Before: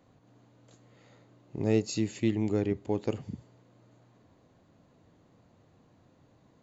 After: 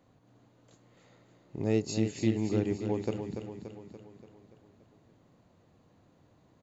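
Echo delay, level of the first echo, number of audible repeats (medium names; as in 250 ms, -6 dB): 288 ms, -7.5 dB, 6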